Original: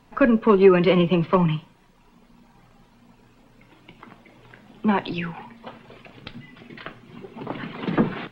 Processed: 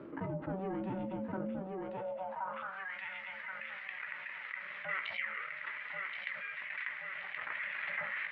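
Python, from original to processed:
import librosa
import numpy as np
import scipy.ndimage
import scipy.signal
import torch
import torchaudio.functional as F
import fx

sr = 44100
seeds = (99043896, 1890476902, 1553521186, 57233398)

y = np.where(x < 0.0, 10.0 ** (-7.0 / 20.0) * x, x)
y = scipy.signal.sosfilt(scipy.signal.butter(16, 160.0, 'highpass', fs=sr, output='sos'), y)
y = fx.doubler(y, sr, ms=14.0, db=-8)
y = y * np.sin(2.0 * np.pi * 380.0 * np.arange(len(y)) / sr)
y = scipy.signal.sosfilt(scipy.signal.butter(2, 2700.0, 'lowpass', fs=sr, output='sos'), y)
y = fx.peak_eq(y, sr, hz=710.0, db=-13.0, octaves=0.46)
y = fx.echo_feedback(y, sr, ms=1075, feedback_pct=29, wet_db=-12.0)
y = fx.filter_sweep_bandpass(y, sr, from_hz=310.0, to_hz=2000.0, start_s=1.7, end_s=2.96, q=6.0)
y = fx.low_shelf(y, sr, hz=250.0, db=-7.5)
y = fx.env_flatten(y, sr, amount_pct=70)
y = F.gain(torch.from_numpy(y), 5.0).numpy()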